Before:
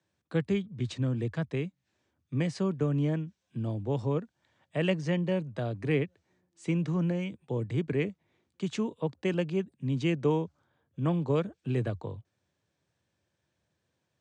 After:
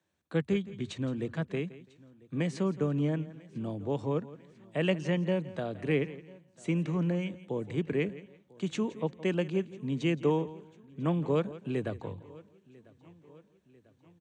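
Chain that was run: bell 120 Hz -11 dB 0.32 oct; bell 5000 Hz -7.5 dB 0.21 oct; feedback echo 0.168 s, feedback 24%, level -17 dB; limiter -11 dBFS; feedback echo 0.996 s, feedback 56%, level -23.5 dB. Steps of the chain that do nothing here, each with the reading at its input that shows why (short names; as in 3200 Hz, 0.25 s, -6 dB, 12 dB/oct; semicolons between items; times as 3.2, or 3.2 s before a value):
limiter -11 dBFS: input peak -15.0 dBFS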